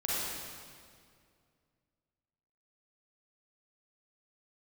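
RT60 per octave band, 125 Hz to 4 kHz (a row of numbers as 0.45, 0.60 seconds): 2.8, 2.6, 2.3, 2.0, 1.9, 1.8 seconds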